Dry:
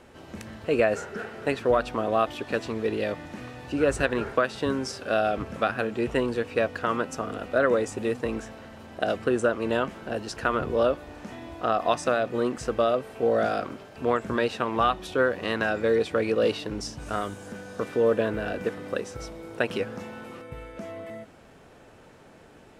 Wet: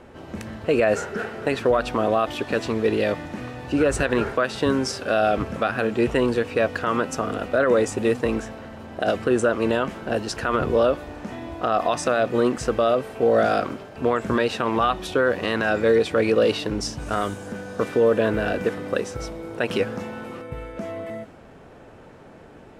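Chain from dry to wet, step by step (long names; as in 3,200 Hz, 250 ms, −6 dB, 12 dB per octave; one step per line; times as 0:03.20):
brickwall limiter −16.5 dBFS, peak gain reduction 8 dB
one half of a high-frequency compander decoder only
level +6.5 dB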